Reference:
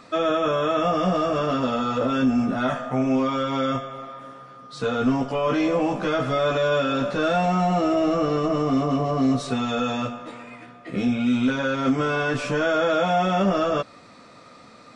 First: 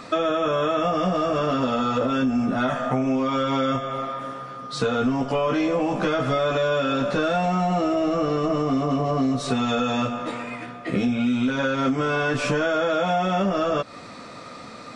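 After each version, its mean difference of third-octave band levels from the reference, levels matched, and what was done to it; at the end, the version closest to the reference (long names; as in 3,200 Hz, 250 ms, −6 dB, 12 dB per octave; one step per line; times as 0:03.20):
2.0 dB: downward compressor 6 to 1, threshold −28 dBFS, peak gain reduction 11 dB
level +8 dB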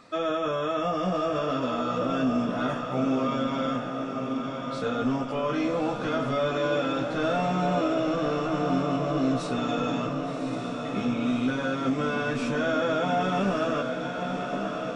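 5.0 dB: feedback delay with all-pass diffusion 1,133 ms, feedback 64%, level −5.5 dB
level −5.5 dB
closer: first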